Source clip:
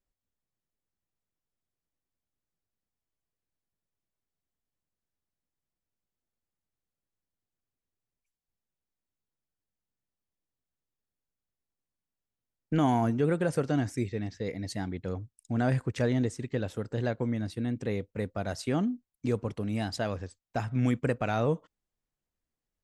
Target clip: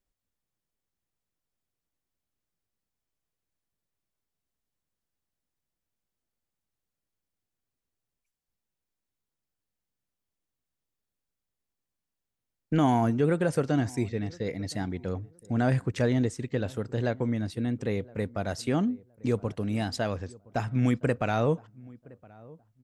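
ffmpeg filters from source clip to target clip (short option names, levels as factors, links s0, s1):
-filter_complex "[0:a]asplit=2[s0][s1];[s1]adelay=1017,lowpass=f=1000:p=1,volume=0.075,asplit=2[s2][s3];[s3]adelay=1017,lowpass=f=1000:p=1,volume=0.25[s4];[s0][s2][s4]amix=inputs=3:normalize=0,volume=1.26"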